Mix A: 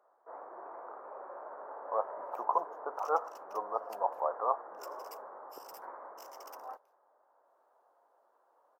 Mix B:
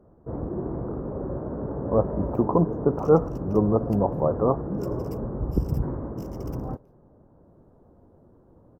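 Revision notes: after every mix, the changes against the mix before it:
master: remove HPF 760 Hz 24 dB/oct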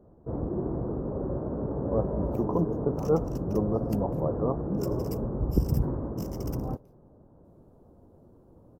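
speech -6.5 dB; second sound +8.0 dB; master: add bell 2300 Hz -6 dB 1.8 oct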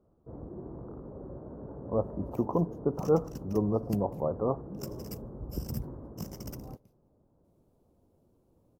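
first sound -12.0 dB

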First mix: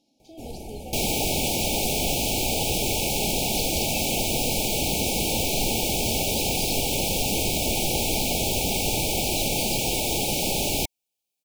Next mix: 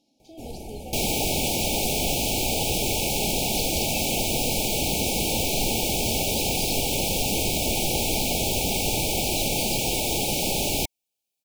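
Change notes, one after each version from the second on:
none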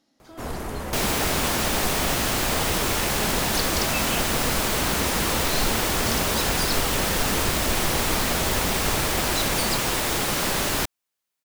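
first sound +6.0 dB; master: remove brick-wall FIR band-stop 900–2200 Hz

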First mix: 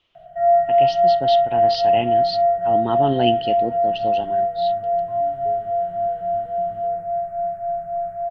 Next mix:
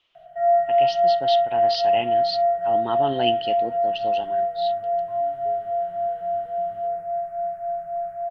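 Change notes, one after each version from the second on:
master: add low shelf 420 Hz -10.5 dB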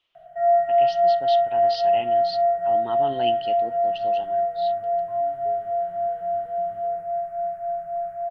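speech -5.5 dB

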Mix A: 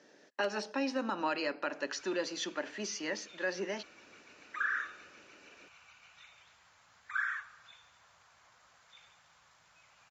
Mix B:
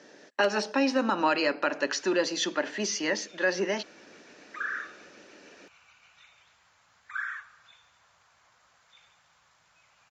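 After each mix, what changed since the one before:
speech +8.5 dB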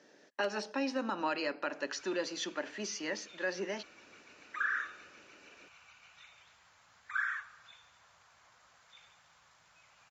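speech -9.0 dB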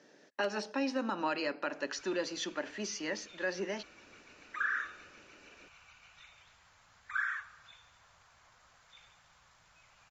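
master: remove HPF 160 Hz 6 dB/oct

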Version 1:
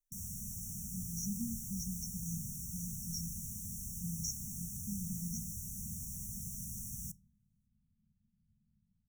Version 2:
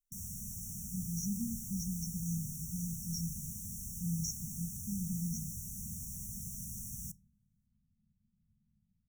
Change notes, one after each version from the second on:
speech: add bell 140 Hz +13 dB 0.48 oct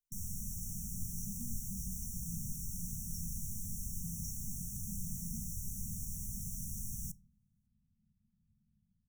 speech -10.5 dB; first sound: remove HPF 73 Hz 6 dB/oct

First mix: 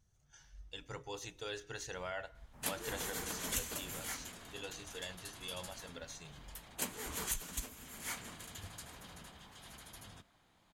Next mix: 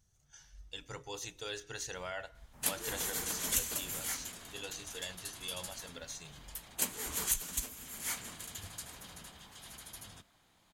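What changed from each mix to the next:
master: add high shelf 3800 Hz +7.5 dB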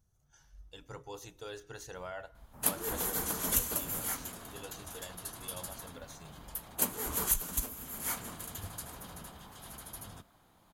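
background +6.0 dB; master: add band shelf 3900 Hz -8.5 dB 2.6 oct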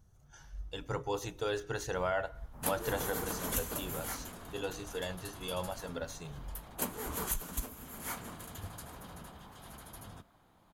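speech +10.5 dB; master: add high shelf 3800 Hz -7.5 dB

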